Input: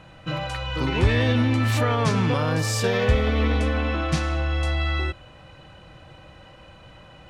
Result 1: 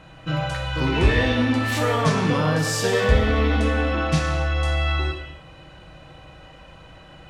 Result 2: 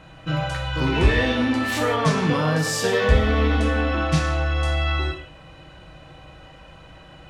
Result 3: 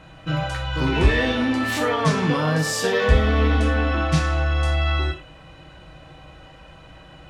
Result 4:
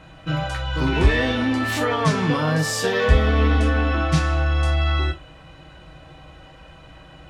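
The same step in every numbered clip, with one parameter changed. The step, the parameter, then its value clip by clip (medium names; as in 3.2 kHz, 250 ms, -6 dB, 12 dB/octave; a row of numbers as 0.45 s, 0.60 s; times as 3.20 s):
gated-style reverb, gate: 320 ms, 200 ms, 130 ms, 80 ms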